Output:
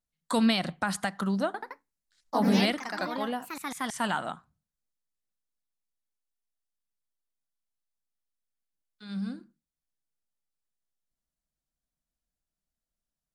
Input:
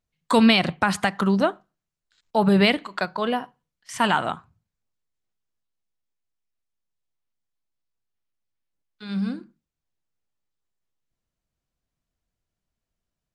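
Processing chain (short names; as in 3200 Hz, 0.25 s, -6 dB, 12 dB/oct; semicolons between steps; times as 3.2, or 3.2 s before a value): fifteen-band EQ 100 Hz -12 dB, 400 Hz -6 dB, 1000 Hz -4 dB, 2500 Hz -7 dB, 10000 Hz +5 dB; 1.46–4.11 echoes that change speed 82 ms, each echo +2 st, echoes 3; gain -5.5 dB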